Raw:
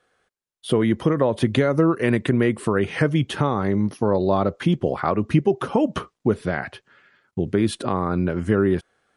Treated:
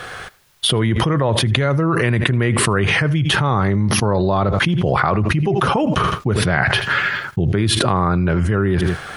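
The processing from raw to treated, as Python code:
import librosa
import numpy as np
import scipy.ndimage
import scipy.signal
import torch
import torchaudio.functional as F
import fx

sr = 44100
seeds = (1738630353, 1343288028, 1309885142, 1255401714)

y = fx.graphic_eq(x, sr, hz=(125, 250, 500, 8000), db=(5, -8, -5, -5))
y = fx.echo_feedback(y, sr, ms=80, feedback_pct=33, wet_db=-22)
y = fx.env_flatten(y, sr, amount_pct=100)
y = F.gain(torch.from_numpy(y), -3.0).numpy()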